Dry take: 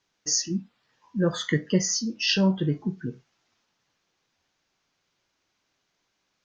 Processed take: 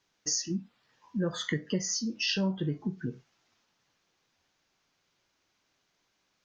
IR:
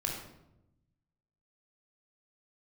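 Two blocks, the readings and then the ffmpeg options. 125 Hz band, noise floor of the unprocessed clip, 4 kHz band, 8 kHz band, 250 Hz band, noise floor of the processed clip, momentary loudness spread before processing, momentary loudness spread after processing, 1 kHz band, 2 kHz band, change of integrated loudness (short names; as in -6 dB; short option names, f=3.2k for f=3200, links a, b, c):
-7.0 dB, -76 dBFS, -5.5 dB, n/a, -6.5 dB, -76 dBFS, 11 LU, 9 LU, -7.0 dB, -5.0 dB, -6.5 dB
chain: -af "acompressor=threshold=-30dB:ratio=2.5"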